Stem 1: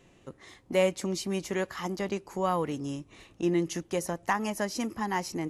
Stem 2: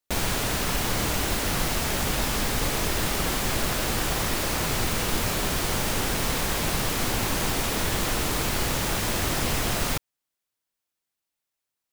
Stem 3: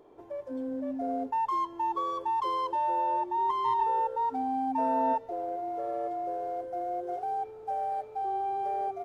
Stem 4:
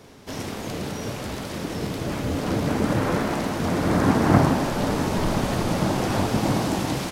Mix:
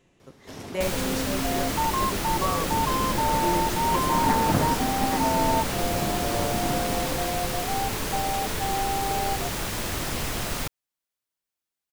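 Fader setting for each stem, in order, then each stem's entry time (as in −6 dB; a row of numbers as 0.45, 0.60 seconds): −4.0, −3.5, +2.5, −8.0 decibels; 0.00, 0.70, 0.45, 0.20 seconds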